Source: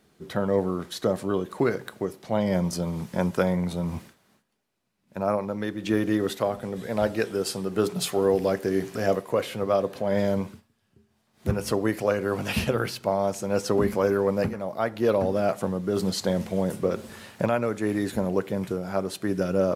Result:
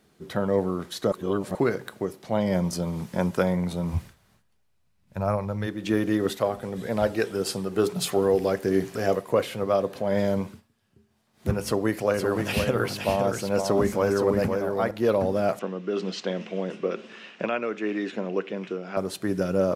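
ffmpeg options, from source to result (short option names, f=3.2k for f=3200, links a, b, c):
-filter_complex "[0:a]asplit=3[a][b][c];[a]afade=t=out:st=3.93:d=0.02[d];[b]asubboost=boost=10:cutoff=87,afade=t=in:st=3.93:d=0.02,afade=t=out:st=5.66:d=0.02[e];[c]afade=t=in:st=5.66:d=0.02[f];[d][e][f]amix=inputs=3:normalize=0,asettb=1/sr,asplit=3[g][h][i];[g]atrim=end=6.254[j];[h]atrim=start=6.25:end=9.59,asetpts=PTS-STARTPTS,afade=t=in:d=0.004:c=qsin,afade=t=out:st=3.336:d=0.004:c=qsin,aphaser=in_gain=1:out_gain=1:delay=2.7:decay=0.24:speed=1.6:type=sinusoidal[k];[i]atrim=start=9.586[l];[j][k]acrossfade=d=0.004:c1=hsin:c2=qsin[m];[m][l]acrossfade=d=0.004:c1=qsin:c2=hsin,asettb=1/sr,asplit=3[n][o][p];[n]atrim=end=11.624[q];[o]atrim=start=11.62:end=14.91,asetpts=PTS-STARTPTS,afade=t=in:d=0.004:c=qsin,afade=t=out:st=3.286:d=0.004:c=qsin,aecho=1:1:517:0.531,atrim=end_sample=145089[r];[p]atrim=start=14.906[s];[q][r]acrossfade=d=0.004:c1=hsin:c2=qsin[t];[t][s]acrossfade=d=0.004:c1=qsin:c2=hsin,asettb=1/sr,asplit=3[u][v][w];[u]atrim=end=15.594[x];[v]atrim=start=15.59:end=18.97,asetpts=PTS-STARTPTS,afade=t=in:d=0.004:c=qsin,afade=t=out:st=3.376:d=0.004:c=qsin,highpass=f=210:w=0.5412,highpass=f=210:w=1.3066,equalizer=f=250:t=q:w=4:g=-5,equalizer=f=570:t=q:w=4:g=-4,equalizer=f=870:t=q:w=4:g=-7,equalizer=f=2.7k:t=q:w=4:g=9,equalizer=f=4.4k:t=q:w=4:g=-7,lowpass=f=5.3k:w=0.5412,lowpass=f=5.3k:w=1.3066[y];[w]atrim=start=18.966[z];[x][y]acrossfade=d=0.004:c1=hsin:c2=qsin[aa];[aa][z]acrossfade=d=0.004:c1=qsin:c2=hsin,asplit=3[ab][ac][ad];[ab]atrim=end=1.122[ae];[ac]atrim=start=1.118:end=1.552,asetpts=PTS-STARTPTS,areverse[af];[ad]atrim=start=1.548[ag];[ae][af]acrossfade=d=0.004:c1=hsin:c2=hsin[ah];[ah][ag]acrossfade=d=0.004:c1=hsin:c2=hsin"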